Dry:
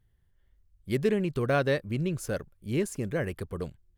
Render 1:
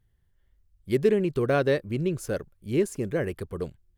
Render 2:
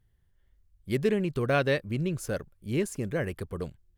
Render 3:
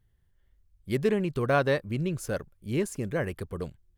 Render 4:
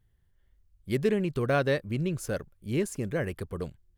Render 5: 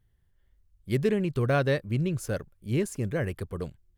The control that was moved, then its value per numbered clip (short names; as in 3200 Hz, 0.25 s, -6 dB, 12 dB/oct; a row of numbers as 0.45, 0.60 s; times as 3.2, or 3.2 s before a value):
dynamic EQ, frequency: 380, 2700, 970, 7700, 110 Hz